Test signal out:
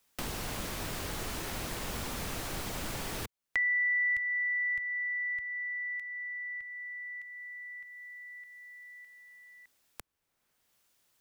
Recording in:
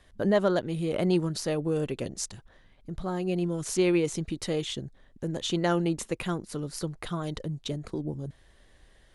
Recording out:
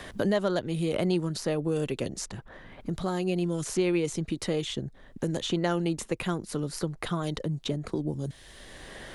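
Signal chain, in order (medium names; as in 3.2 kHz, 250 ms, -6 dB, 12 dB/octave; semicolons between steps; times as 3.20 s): three bands compressed up and down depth 70%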